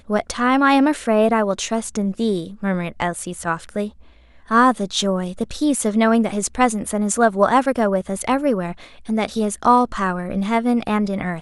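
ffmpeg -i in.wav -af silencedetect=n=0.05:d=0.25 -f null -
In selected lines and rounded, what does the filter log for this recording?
silence_start: 3.88
silence_end: 4.51 | silence_duration: 0.63
silence_start: 8.72
silence_end: 9.09 | silence_duration: 0.37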